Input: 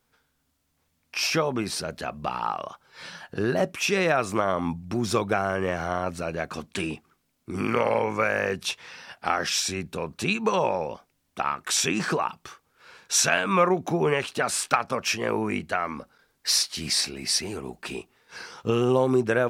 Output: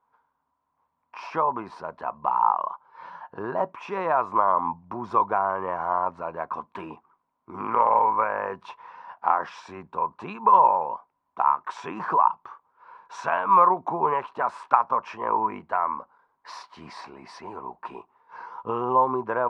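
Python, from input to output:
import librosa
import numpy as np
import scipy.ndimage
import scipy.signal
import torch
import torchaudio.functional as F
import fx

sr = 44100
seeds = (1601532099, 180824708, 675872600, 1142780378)

y = fx.lowpass_res(x, sr, hz=990.0, q=10.0)
y = fx.tilt_eq(y, sr, slope=3.0)
y = F.gain(torch.from_numpy(y), -4.0).numpy()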